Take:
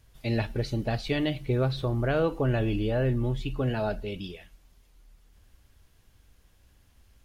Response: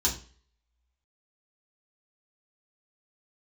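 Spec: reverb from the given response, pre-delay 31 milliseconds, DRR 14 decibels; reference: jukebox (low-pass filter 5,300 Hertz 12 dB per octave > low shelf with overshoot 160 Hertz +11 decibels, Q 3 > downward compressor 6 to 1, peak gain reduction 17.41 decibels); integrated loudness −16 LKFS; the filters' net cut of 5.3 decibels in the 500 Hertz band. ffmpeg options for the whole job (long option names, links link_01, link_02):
-filter_complex "[0:a]equalizer=frequency=500:width_type=o:gain=-5,asplit=2[link_01][link_02];[1:a]atrim=start_sample=2205,adelay=31[link_03];[link_02][link_03]afir=irnorm=-1:irlink=0,volume=-22dB[link_04];[link_01][link_04]amix=inputs=2:normalize=0,lowpass=5300,lowshelf=frequency=160:width_type=q:width=3:gain=11,acompressor=threshold=-27dB:ratio=6,volume=14.5dB"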